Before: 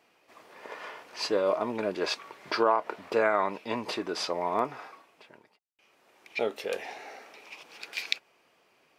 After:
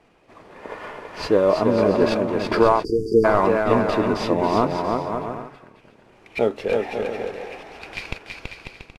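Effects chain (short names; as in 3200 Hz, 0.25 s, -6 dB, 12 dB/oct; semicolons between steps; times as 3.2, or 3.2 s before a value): CVSD 64 kbps; RIAA curve playback; on a send: bouncing-ball echo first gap 0.33 s, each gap 0.65×, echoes 5; on the sum: spectral delete 2.84–3.25, 480–4600 Hz; gain +6.5 dB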